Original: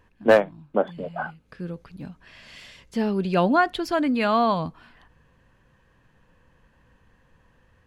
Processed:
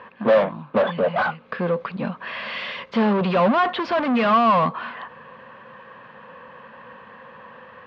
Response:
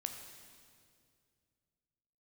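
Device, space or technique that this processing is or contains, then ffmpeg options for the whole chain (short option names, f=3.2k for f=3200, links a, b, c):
overdrive pedal into a guitar cabinet: -filter_complex "[0:a]asplit=2[a][b];[b]highpass=f=720:p=1,volume=35dB,asoftclip=type=tanh:threshold=-7dB[c];[a][c]amix=inputs=2:normalize=0,lowpass=f=2.2k:p=1,volume=-6dB,highpass=110,equalizer=f=220:t=q:w=4:g=7,equalizer=f=310:t=q:w=4:g=-8,equalizer=f=530:t=q:w=4:g=7,equalizer=f=1.1k:t=q:w=4:g=8,lowpass=f=3.9k:w=0.5412,lowpass=f=3.9k:w=1.3066,volume=-7.5dB"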